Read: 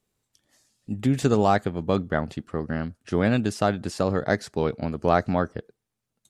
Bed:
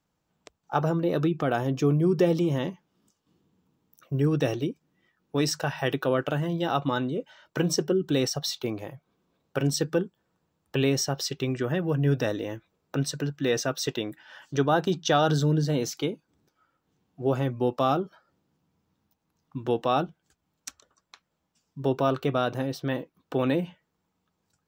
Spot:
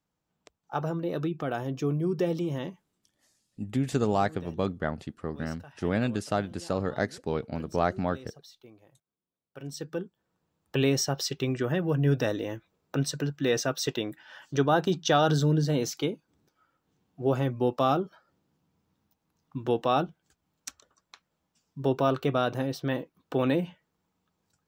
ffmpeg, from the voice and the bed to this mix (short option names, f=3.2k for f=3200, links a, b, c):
-filter_complex "[0:a]adelay=2700,volume=-5.5dB[a];[1:a]volume=16dB,afade=t=out:st=2.81:d=0.35:silence=0.149624,afade=t=in:st=9.49:d=1.32:silence=0.0841395[b];[a][b]amix=inputs=2:normalize=0"